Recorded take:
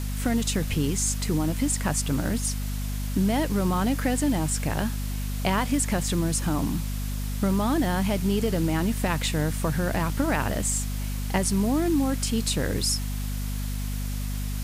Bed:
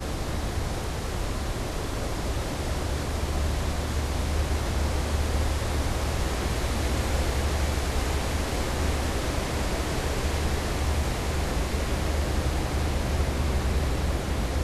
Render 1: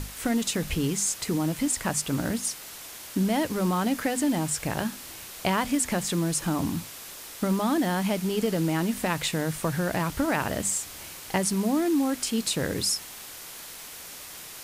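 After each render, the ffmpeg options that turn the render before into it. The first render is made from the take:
-af "bandreject=f=50:t=h:w=6,bandreject=f=100:t=h:w=6,bandreject=f=150:t=h:w=6,bandreject=f=200:t=h:w=6,bandreject=f=250:t=h:w=6"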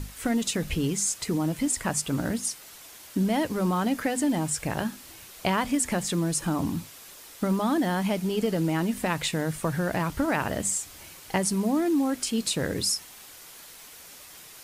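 -af "afftdn=nr=6:nf=-42"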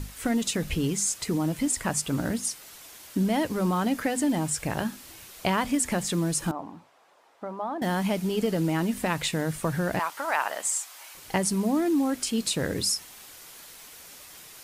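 -filter_complex "[0:a]asettb=1/sr,asplit=3[s0][s1][s2];[s0]atrim=end=6.514[s3];[s1]atrim=start=6.51:end=7.82,asetpts=PTS-STARTPTS,afade=t=in:d=0.004:c=qsin,afade=t=out:st=1.306:d=0.004:c=qsin,bandpass=f=780:t=q:w=1.8[s4];[s2]atrim=start=7.816[s5];[s3][s4]acrossfade=d=0.004:c1=hsin:c2=qsin[s6];[s6][s5]acrossfade=d=0.004:c1=qsin:c2=hsin,asettb=1/sr,asplit=3[s7][s8][s9];[s7]atrim=end=9.994[s10];[s8]atrim=start=9.99:end=11.15,asetpts=PTS-STARTPTS,afade=t=in:d=0.004:c=qsin,afade=t=out:st=1.156:d=0.004:c=qsin,highpass=f=860:t=q:w=1.5[s11];[s9]atrim=start=11.146[s12];[s10][s11]acrossfade=d=0.004:c1=hsin:c2=qsin[s13];[s13][s12]acrossfade=d=0.004:c1=qsin:c2=hsin"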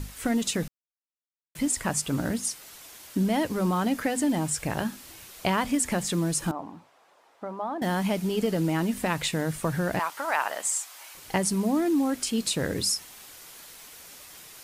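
-filter_complex "[0:a]asplit=3[s0][s1][s2];[s0]atrim=end=0.68,asetpts=PTS-STARTPTS,afade=t=out:st=0.676:d=0.004:c=hsin[s3];[s1]atrim=start=0.68:end=1.55,asetpts=PTS-STARTPTS,volume=0[s4];[s2]atrim=start=1.55,asetpts=PTS-STARTPTS,afade=t=in:d=0.004:c=hsin[s5];[s3][s4][s5]concat=n=3:v=0:a=1"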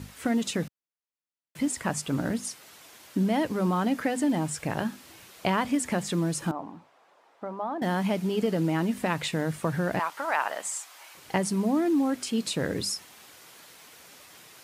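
-af "highpass=97,highshelf=f=5100:g=-8"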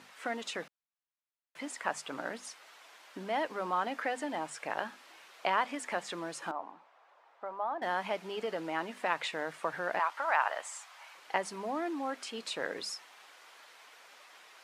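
-af "highpass=710,aemphasis=mode=reproduction:type=75fm"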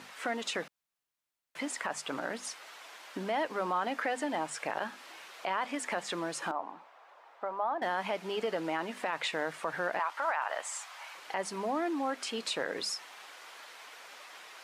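-filter_complex "[0:a]asplit=2[s0][s1];[s1]acompressor=threshold=0.01:ratio=6,volume=1[s2];[s0][s2]amix=inputs=2:normalize=0,alimiter=limit=0.0841:level=0:latency=1:release=31"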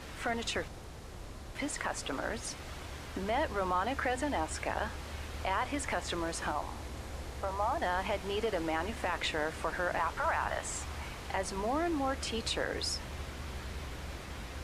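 -filter_complex "[1:a]volume=0.15[s0];[0:a][s0]amix=inputs=2:normalize=0"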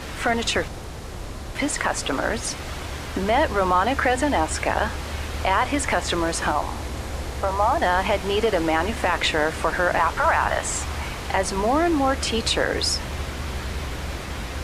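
-af "volume=3.98"

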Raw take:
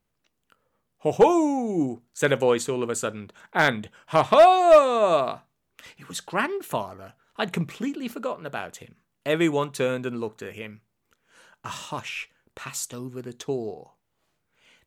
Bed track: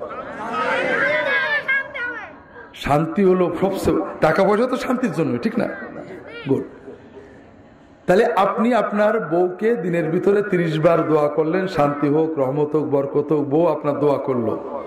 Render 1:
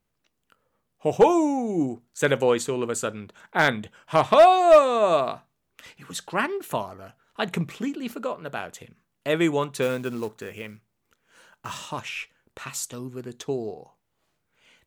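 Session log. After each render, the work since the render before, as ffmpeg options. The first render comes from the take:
-filter_complex "[0:a]asettb=1/sr,asplit=3[s0][s1][s2];[s0]atrim=end=9.824[s3];[s1]atrim=start=9.82:end=11.8,asetpts=PTS-STARTPTS,afade=t=in:d=0.004:c=qsin,afade=t=out:st=1.976:d=0.004:c=qsin,acrusher=bits=5:mode=log:mix=0:aa=0.000001[s4];[s2]atrim=start=11.796[s5];[s3][s4]acrossfade=d=0.004:c1=hsin:c2=qsin[s6];[s6][s5]acrossfade=d=0.004:c1=qsin:c2=hsin"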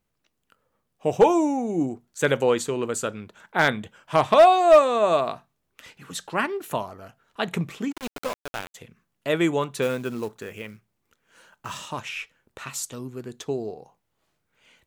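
-filter_complex "[0:a]asplit=3[s0][s1][s2];[s0]afade=t=out:st=7.91:d=0.02[s3];[s1]aeval=exprs='val(0)*gte(abs(val(0)),0.0376)':c=same,afade=t=in:st=7.91:d=0.02,afade=t=out:st=8.74:d=0.02[s4];[s2]afade=t=in:st=8.74:d=0.02[s5];[s3][s4][s5]amix=inputs=3:normalize=0"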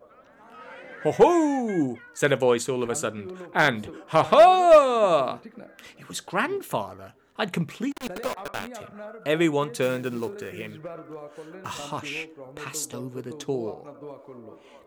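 -filter_complex "[1:a]volume=0.0708[s0];[0:a][s0]amix=inputs=2:normalize=0"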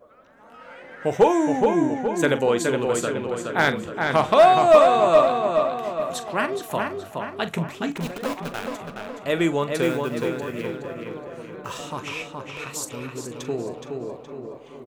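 -filter_complex "[0:a]asplit=2[s0][s1];[s1]adelay=42,volume=0.224[s2];[s0][s2]amix=inputs=2:normalize=0,asplit=2[s3][s4];[s4]adelay=420,lowpass=f=4400:p=1,volume=0.631,asplit=2[s5][s6];[s6]adelay=420,lowpass=f=4400:p=1,volume=0.51,asplit=2[s7][s8];[s8]adelay=420,lowpass=f=4400:p=1,volume=0.51,asplit=2[s9][s10];[s10]adelay=420,lowpass=f=4400:p=1,volume=0.51,asplit=2[s11][s12];[s12]adelay=420,lowpass=f=4400:p=1,volume=0.51,asplit=2[s13][s14];[s14]adelay=420,lowpass=f=4400:p=1,volume=0.51,asplit=2[s15][s16];[s16]adelay=420,lowpass=f=4400:p=1,volume=0.51[s17];[s3][s5][s7][s9][s11][s13][s15][s17]amix=inputs=8:normalize=0"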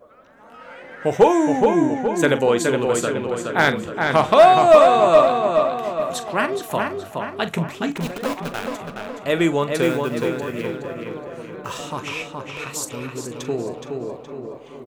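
-af "volume=1.41,alimiter=limit=0.794:level=0:latency=1"

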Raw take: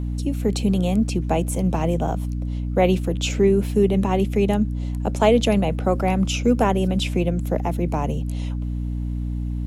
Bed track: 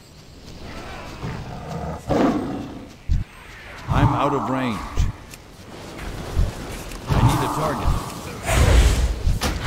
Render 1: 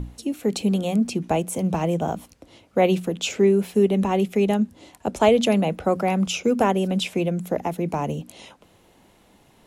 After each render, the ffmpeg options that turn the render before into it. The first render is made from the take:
-af "bandreject=f=60:t=h:w=6,bandreject=f=120:t=h:w=6,bandreject=f=180:t=h:w=6,bandreject=f=240:t=h:w=6,bandreject=f=300:t=h:w=6"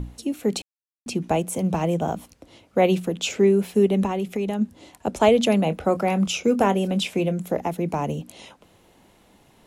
-filter_complex "[0:a]asplit=3[s0][s1][s2];[s0]afade=t=out:st=4.06:d=0.02[s3];[s1]acompressor=threshold=0.0891:ratio=6:attack=3.2:release=140:knee=1:detection=peak,afade=t=in:st=4.06:d=0.02,afade=t=out:st=4.6:d=0.02[s4];[s2]afade=t=in:st=4.6:d=0.02[s5];[s3][s4][s5]amix=inputs=3:normalize=0,asettb=1/sr,asplit=3[s6][s7][s8];[s6]atrim=end=5.634[s9];[s7]atrim=start=5.63:end=7.61,asetpts=PTS-STARTPTS,afade=t=in:d=0.004:c=qsin,afade=t=out:st=1.976:d=0.004:c=qsin,asplit=2[s10][s11];[s11]adelay=25,volume=0.211[s12];[s10][s12]amix=inputs=2:normalize=0,atrim=end_sample=87318[s13];[s8]atrim=start=7.606[s14];[s9][s13]acrossfade=d=0.004:c1=hsin:c2=qsin[s15];[s15][s14]acrossfade=d=0.004:c1=qsin:c2=hsin,asplit=3[s16][s17][s18];[s16]atrim=end=0.62,asetpts=PTS-STARTPTS,afade=t=out:st=0.616:d=0.004:c=hsin[s19];[s17]atrim=start=0.62:end=1.06,asetpts=PTS-STARTPTS,volume=0[s20];[s18]atrim=start=1.06,asetpts=PTS-STARTPTS,afade=t=in:d=0.004:c=hsin[s21];[s19][s20][s21]concat=n=3:v=0:a=1"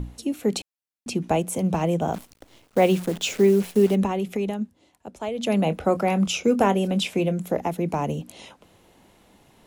-filter_complex "[0:a]asplit=3[s0][s1][s2];[s0]afade=t=out:st=2.13:d=0.02[s3];[s1]acrusher=bits=7:dc=4:mix=0:aa=0.000001,afade=t=in:st=2.13:d=0.02,afade=t=out:st=3.94:d=0.02[s4];[s2]afade=t=in:st=3.94:d=0.02[s5];[s3][s4][s5]amix=inputs=3:normalize=0,asplit=3[s6][s7][s8];[s6]atrim=end=4.73,asetpts=PTS-STARTPTS,afade=t=out:st=4.45:d=0.28:silence=0.211349[s9];[s7]atrim=start=4.73:end=5.34,asetpts=PTS-STARTPTS,volume=0.211[s10];[s8]atrim=start=5.34,asetpts=PTS-STARTPTS,afade=t=in:d=0.28:silence=0.211349[s11];[s9][s10][s11]concat=n=3:v=0:a=1"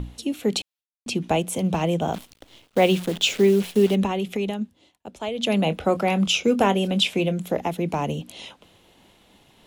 -af "agate=range=0.0224:threshold=0.002:ratio=3:detection=peak,equalizer=f=3300:t=o:w=0.9:g=8"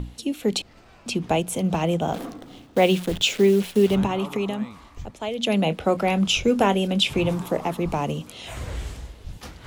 -filter_complex "[1:a]volume=0.141[s0];[0:a][s0]amix=inputs=2:normalize=0"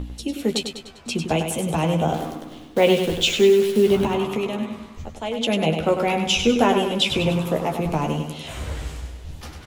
-filter_complex "[0:a]asplit=2[s0][s1];[s1]adelay=13,volume=0.501[s2];[s0][s2]amix=inputs=2:normalize=0,asplit=2[s3][s4];[s4]aecho=0:1:99|198|297|396|495|594:0.447|0.223|0.112|0.0558|0.0279|0.014[s5];[s3][s5]amix=inputs=2:normalize=0"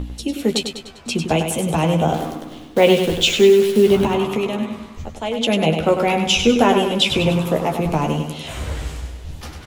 -af "volume=1.5,alimiter=limit=0.794:level=0:latency=1"

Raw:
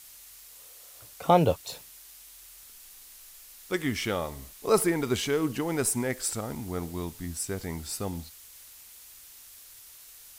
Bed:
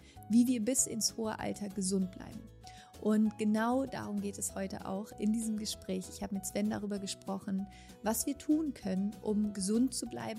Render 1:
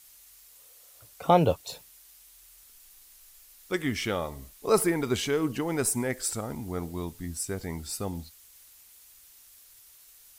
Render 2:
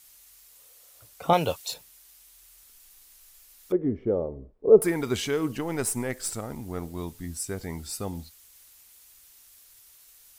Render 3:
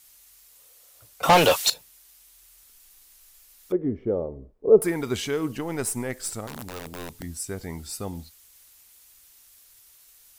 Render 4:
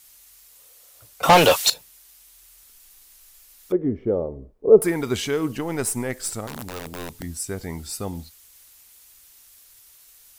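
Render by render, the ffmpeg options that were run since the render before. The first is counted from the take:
-af "afftdn=nr=6:nf=-50"
-filter_complex "[0:a]asettb=1/sr,asplit=3[s0][s1][s2];[s0]atrim=end=1.334[s3];[s1]atrim=start=1.33:end=1.74,asetpts=PTS-STARTPTS,afade=t=in:d=0.004:c=qsin,afade=t=out:st=0.406:d=0.004:c=qsin,tiltshelf=f=970:g=-6.5[s4];[s2]atrim=start=1.736[s5];[s3][s4]acrossfade=d=0.004:c1=hsin:c2=qsin[s6];[s6][s5]acrossfade=d=0.004:c1=qsin:c2=hsin,asettb=1/sr,asplit=3[s7][s8][s9];[s7]atrim=end=3.724[s10];[s8]atrim=start=3.72:end=4.82,asetpts=PTS-STARTPTS,afade=t=in:d=0.004:c=qsin,afade=t=out:st=1.096:d=0.004:c=qsin,lowpass=f=460:t=q:w=2.7[s11];[s9]atrim=start=4.816[s12];[s10][s11]acrossfade=d=0.004:c1=hsin:c2=qsin[s13];[s13][s12]acrossfade=d=0.004:c1=qsin:c2=hsin,asettb=1/sr,asplit=3[s14][s15][s16];[s14]atrim=end=5.544[s17];[s15]atrim=start=5.54:end=6.99,asetpts=PTS-STARTPTS,afade=t=in:d=0.004:c=qsin,afade=t=out:st=1.446:d=0.004:c=qsin,aeval=exprs='if(lt(val(0),0),0.708*val(0),val(0))':c=same[s18];[s16]atrim=start=6.986[s19];[s17][s18]acrossfade=d=0.004:c1=hsin:c2=qsin[s20];[s20][s19]acrossfade=d=0.004:c1=qsin:c2=hsin"
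-filter_complex "[0:a]asettb=1/sr,asplit=3[s0][s1][s2];[s0]atrim=end=1.234[s3];[s1]atrim=start=1.23:end=1.7,asetpts=PTS-STARTPTS,afade=t=in:d=0.004:c=qsin,afade=t=out:st=0.466:d=0.004:c=qsin,asplit=2[s4][s5];[s5]highpass=f=720:p=1,volume=20,asoftclip=type=tanh:threshold=0.398[s6];[s4][s6]amix=inputs=2:normalize=0,lowpass=f=7800:p=1,volume=0.501[s7];[s2]atrim=start=1.696[s8];[s3][s7]acrossfade=d=0.004:c1=hsin:c2=qsin[s9];[s9][s8]acrossfade=d=0.004:c1=qsin:c2=hsin,asettb=1/sr,asplit=3[s10][s11][s12];[s10]atrim=end=6.474[s13];[s11]atrim=start=6.47:end=7.23,asetpts=PTS-STARTPTS,afade=t=in:d=0.004:c=qsin,afade=t=out:st=0.756:d=0.004:c=qsin,aeval=exprs='(mod(26.6*val(0)+1,2)-1)/26.6':c=same[s14];[s12]atrim=start=7.226[s15];[s13][s14]acrossfade=d=0.004:c1=hsin:c2=qsin[s16];[s16][s15]acrossfade=d=0.004:c1=qsin:c2=hsin"
-af "volume=1.41"

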